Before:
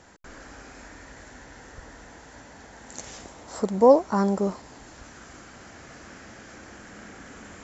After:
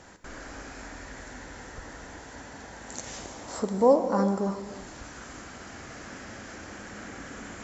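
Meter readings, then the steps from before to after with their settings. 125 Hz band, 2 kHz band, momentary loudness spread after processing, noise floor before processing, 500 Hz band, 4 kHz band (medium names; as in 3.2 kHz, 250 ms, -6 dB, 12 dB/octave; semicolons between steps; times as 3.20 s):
-1.5 dB, +2.0 dB, 20 LU, -48 dBFS, -3.5 dB, +1.5 dB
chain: in parallel at +3 dB: compression, threshold -37 dBFS, peak gain reduction 24.5 dB; on the sum: gated-style reverb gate 380 ms flat, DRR 7 dB; trim -5.5 dB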